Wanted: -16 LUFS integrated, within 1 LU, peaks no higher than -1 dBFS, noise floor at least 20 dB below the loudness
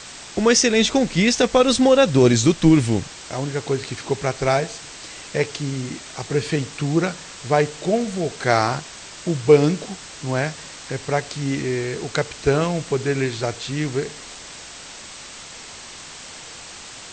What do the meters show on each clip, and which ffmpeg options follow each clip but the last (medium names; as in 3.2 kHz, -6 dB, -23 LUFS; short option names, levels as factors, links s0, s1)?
noise floor -39 dBFS; noise floor target -41 dBFS; loudness -20.5 LUFS; peak level -3.0 dBFS; loudness target -16.0 LUFS
-> -af "afftdn=nr=6:nf=-39"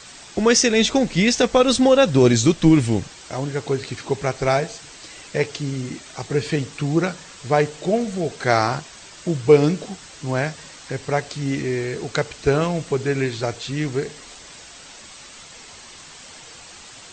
noise floor -42 dBFS; loudness -20.5 LUFS; peak level -3.0 dBFS; loudness target -16.0 LUFS
-> -af "volume=1.68,alimiter=limit=0.891:level=0:latency=1"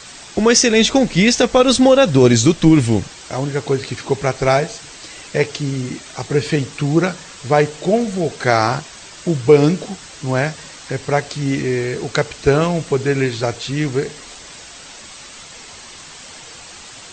loudness -16.5 LUFS; peak level -1.0 dBFS; noise floor -38 dBFS